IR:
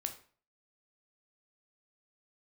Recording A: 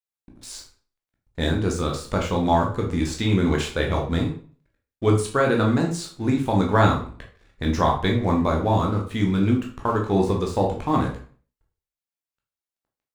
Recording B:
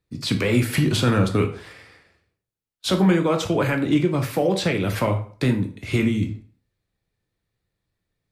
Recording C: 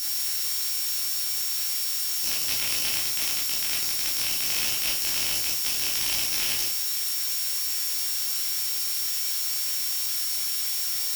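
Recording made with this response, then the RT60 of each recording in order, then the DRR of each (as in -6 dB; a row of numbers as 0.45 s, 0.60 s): B; 0.45 s, 0.45 s, 0.45 s; -0.5 dB, 5.5 dB, -5.0 dB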